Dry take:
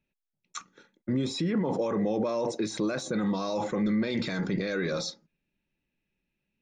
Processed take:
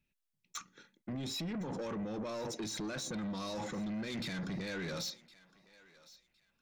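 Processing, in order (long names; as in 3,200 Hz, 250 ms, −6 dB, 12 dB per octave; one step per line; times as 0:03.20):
parametric band 550 Hz −8 dB 2.4 octaves
downward compressor, threshold −32 dBFS, peak gain reduction 5.5 dB
soft clipping −36.5 dBFS, distortion −11 dB
feedback echo with a high-pass in the loop 1,061 ms, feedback 26%, high-pass 710 Hz, level −19 dB
level +1.5 dB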